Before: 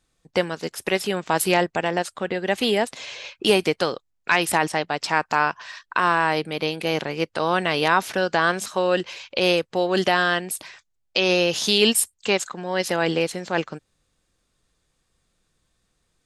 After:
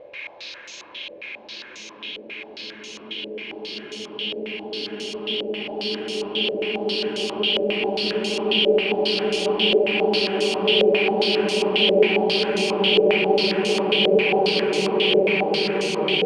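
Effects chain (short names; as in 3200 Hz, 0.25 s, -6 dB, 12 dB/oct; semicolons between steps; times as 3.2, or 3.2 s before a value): Paulstretch 42×, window 0.50 s, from 3.23; stepped low-pass 7.4 Hz 550–6600 Hz; gain -3.5 dB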